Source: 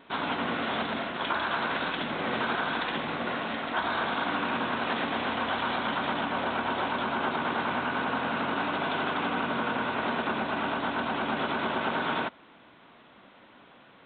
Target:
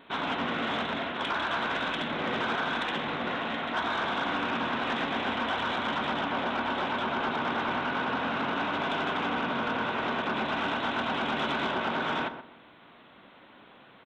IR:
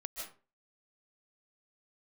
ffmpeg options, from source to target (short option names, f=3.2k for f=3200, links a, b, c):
-filter_complex "[0:a]asetnsamples=n=441:p=0,asendcmd='10.37 highshelf g 9.5;11.71 highshelf g 2.5',highshelf=f=3.3k:g=3.5,asoftclip=type=tanh:threshold=-21.5dB,asplit=2[a][b];[b]adelay=125,lowpass=f=1.4k:p=1,volume=-9dB,asplit=2[c][d];[d]adelay=125,lowpass=f=1.4k:p=1,volume=0.3,asplit=2[e][f];[f]adelay=125,lowpass=f=1.4k:p=1,volume=0.3[g];[a][c][e][g]amix=inputs=4:normalize=0"